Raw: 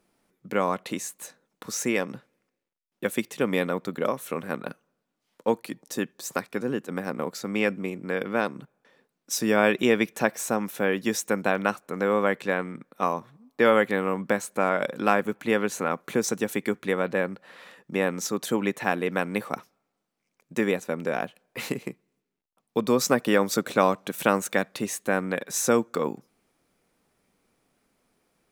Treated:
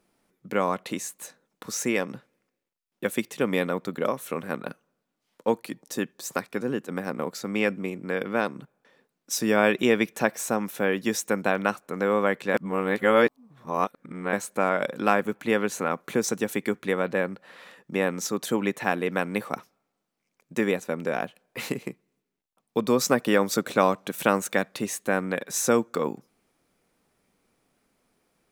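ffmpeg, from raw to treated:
ffmpeg -i in.wav -filter_complex "[0:a]asplit=3[link_01][link_02][link_03];[link_01]atrim=end=12.542[link_04];[link_02]atrim=start=12.538:end=14.332,asetpts=PTS-STARTPTS,areverse[link_05];[link_03]atrim=start=14.328[link_06];[link_04][link_05]acrossfade=duration=0.004:curve1=hsin:curve2=hsin[link_07];[link_07][link_06]acrossfade=duration=0.004:curve1=hsin:curve2=hsin" out.wav

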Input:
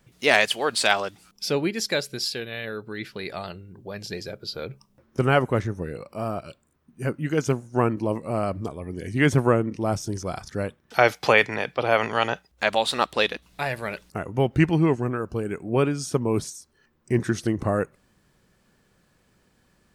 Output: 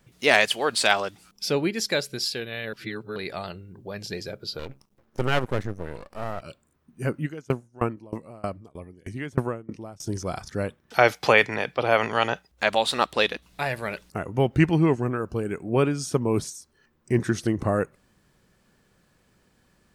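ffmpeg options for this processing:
ffmpeg -i in.wav -filter_complex "[0:a]asettb=1/sr,asplit=3[link_01][link_02][link_03];[link_01]atrim=end=4.594[link_04];[link_02]atrim=start=4.59:end=6.42,asetpts=PTS-STARTPTS,afade=type=in:duration=0.004:curve=qsin,afade=type=out:start_time=1.826:duration=0.004:curve=qsin,aeval=exprs='max(val(0),0)':channel_layout=same[link_05];[link_03]atrim=start=6.416[link_06];[link_04][link_05]acrossfade=duration=0.004:curve1=hsin:curve2=qsin[link_07];[link_07][link_06]acrossfade=duration=0.004:curve1=qsin:curve2=hsin,asplit=3[link_08][link_09][link_10];[link_08]afade=type=out:start_time=7.25:duration=0.02[link_11];[link_09]aeval=exprs='val(0)*pow(10,-26*if(lt(mod(3.2*n/s,1),2*abs(3.2)/1000),1-mod(3.2*n/s,1)/(2*abs(3.2)/1000),(mod(3.2*n/s,1)-2*abs(3.2)/1000)/(1-2*abs(3.2)/1000))/20)':channel_layout=same,afade=type=in:start_time=7.25:duration=0.02,afade=type=out:start_time=10.06:duration=0.02[link_12];[link_10]afade=type=in:start_time=10.06:duration=0.02[link_13];[link_11][link_12][link_13]amix=inputs=3:normalize=0,asplit=3[link_14][link_15][link_16];[link_14]atrim=end=2.732[link_17];[link_15]atrim=start=2.728:end=3.162,asetpts=PTS-STARTPTS,areverse[link_18];[link_16]atrim=start=3.158[link_19];[link_17][link_18]acrossfade=duration=0.004:curve1=hsin:curve2=hsin[link_20];[link_20][link_19]acrossfade=duration=0.004:curve1=hsin:curve2=hsin" out.wav

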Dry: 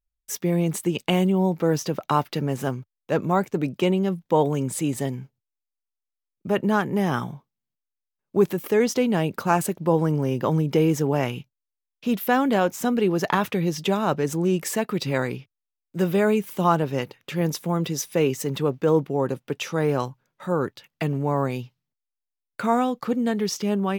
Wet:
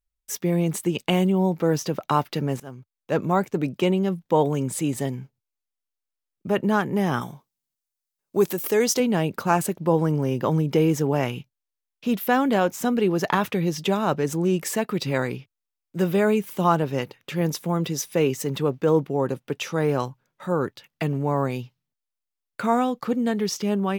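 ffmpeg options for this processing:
ffmpeg -i in.wav -filter_complex "[0:a]asettb=1/sr,asplit=3[link_01][link_02][link_03];[link_01]atrim=end=7.214[link_04];[link_02]atrim=start=7.21:end=9,asetpts=PTS-STARTPTS,afade=type=in:duration=0.004:curve=qsin,afade=type=out:start_time=1.786:duration=0.004:curve=qsin,bass=frequency=250:gain=-5,treble=frequency=4000:gain=9[link_05];[link_03]atrim=start=8.996[link_06];[link_04][link_05]acrossfade=duration=0.004:curve1=hsin:curve2=qsin[link_07];[link_07][link_06]acrossfade=duration=0.004:curve1=qsin:curve2=hsin,asplit=2[link_08][link_09];[link_08]atrim=end=2.6,asetpts=PTS-STARTPTS,afade=type=out:start_time=2.596:duration=0.004:curve=hsin:silence=0.0944061[link_10];[link_09]atrim=start=2.6,asetpts=PTS-STARTPTS,afade=type=in:duration=0.57:silence=0.0944061[link_11];[link_10][link_11]concat=n=2:v=0:a=1" out.wav

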